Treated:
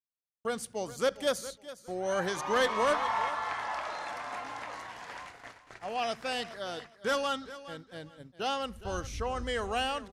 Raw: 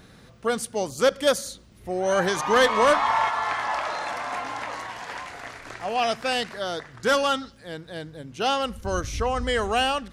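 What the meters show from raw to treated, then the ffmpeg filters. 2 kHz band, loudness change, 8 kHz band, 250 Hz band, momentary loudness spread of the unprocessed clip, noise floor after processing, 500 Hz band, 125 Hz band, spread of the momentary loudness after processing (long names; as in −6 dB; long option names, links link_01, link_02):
−8.5 dB, −8.5 dB, −8.5 dB, −8.5 dB, 17 LU, −62 dBFS, −8.5 dB, −8.5 dB, 16 LU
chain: -filter_complex "[0:a]agate=range=-57dB:threshold=-38dB:ratio=16:detection=peak,asplit=2[link_01][link_02];[link_02]aecho=0:1:412|824:0.168|0.0403[link_03];[link_01][link_03]amix=inputs=2:normalize=0,volume=-8.5dB"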